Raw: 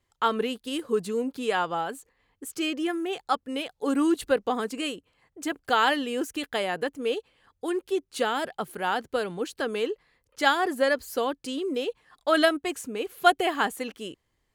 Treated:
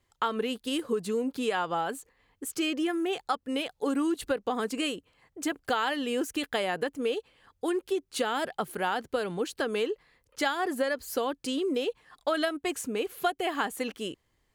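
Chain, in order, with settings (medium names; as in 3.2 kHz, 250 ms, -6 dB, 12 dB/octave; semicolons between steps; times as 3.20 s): compression 6:1, threshold -27 dBFS, peak gain reduction 13.5 dB; trim +2 dB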